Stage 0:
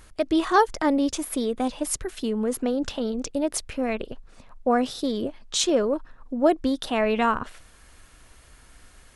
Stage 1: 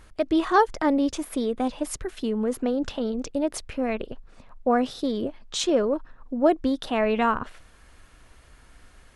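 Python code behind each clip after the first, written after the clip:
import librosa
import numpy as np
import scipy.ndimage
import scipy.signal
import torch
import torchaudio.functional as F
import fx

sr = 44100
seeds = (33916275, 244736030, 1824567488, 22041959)

y = fx.high_shelf(x, sr, hz=4900.0, db=-8.5)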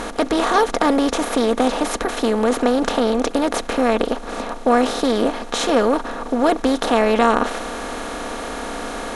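y = fx.bin_compress(x, sr, power=0.4)
y = y + 0.41 * np.pad(y, (int(4.2 * sr / 1000.0), 0))[:len(y)]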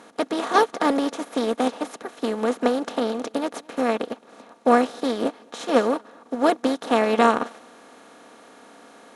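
y = scipy.signal.sosfilt(scipy.signal.butter(4, 120.0, 'highpass', fs=sr, output='sos'), x)
y = y + 10.0 ** (-15.5 / 20.0) * np.pad(y, (int(217 * sr / 1000.0), 0))[:len(y)]
y = fx.upward_expand(y, sr, threshold_db=-26.0, expansion=2.5)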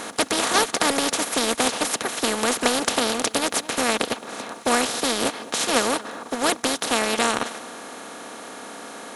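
y = fx.high_shelf(x, sr, hz=6600.0, db=8.0)
y = fx.rider(y, sr, range_db=10, speed_s=2.0)
y = fx.spectral_comp(y, sr, ratio=2.0)
y = y * librosa.db_to_amplitude(-1.0)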